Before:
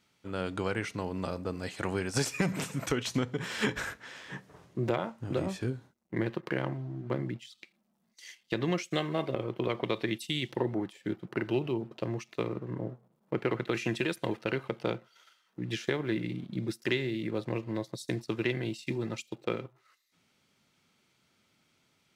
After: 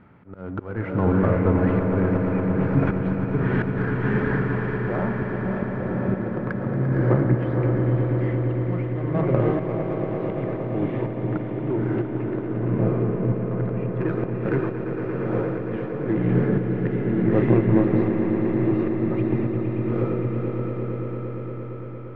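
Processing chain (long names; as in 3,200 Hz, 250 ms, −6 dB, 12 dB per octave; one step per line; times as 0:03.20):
mu-law and A-law mismatch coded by mu
low-pass filter 1,700 Hz 24 dB per octave
low-shelf EQ 280 Hz +8 dB
in parallel at −7.5 dB: soft clipping −30 dBFS, distortion −7 dB
on the sum: feedback delay with all-pass diffusion 517 ms, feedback 44%, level −5 dB
volume swells 479 ms
on a send: echo that builds up and dies away 115 ms, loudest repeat 5, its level −11 dB
on the sum: level +6.5 dB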